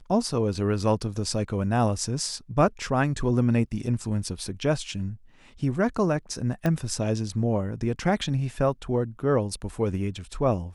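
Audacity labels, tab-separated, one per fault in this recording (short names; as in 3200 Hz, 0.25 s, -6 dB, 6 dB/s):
6.660000	6.660000	pop -14 dBFS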